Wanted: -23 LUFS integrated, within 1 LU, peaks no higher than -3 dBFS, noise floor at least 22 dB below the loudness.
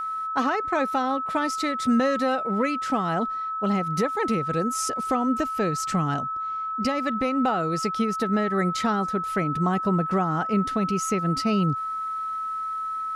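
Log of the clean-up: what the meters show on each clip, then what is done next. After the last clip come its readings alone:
steady tone 1.3 kHz; tone level -27 dBFS; loudness -25.0 LUFS; peak level -11.5 dBFS; loudness target -23.0 LUFS
-> band-stop 1.3 kHz, Q 30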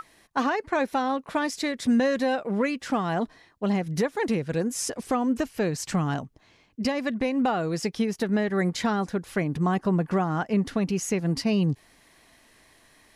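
steady tone not found; loudness -26.5 LUFS; peak level -13.0 dBFS; loudness target -23.0 LUFS
-> trim +3.5 dB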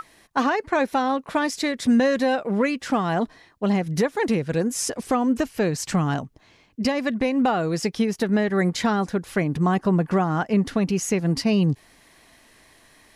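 loudness -23.0 LUFS; peak level -9.5 dBFS; noise floor -56 dBFS

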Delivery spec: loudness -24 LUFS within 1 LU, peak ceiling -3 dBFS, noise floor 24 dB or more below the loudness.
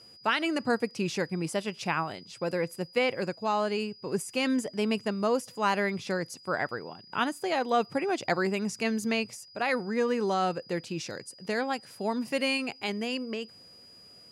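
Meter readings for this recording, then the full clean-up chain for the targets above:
steady tone 4.9 kHz; tone level -51 dBFS; loudness -30.0 LUFS; peak level -13.5 dBFS; loudness target -24.0 LUFS
-> band-stop 4.9 kHz, Q 30; trim +6 dB

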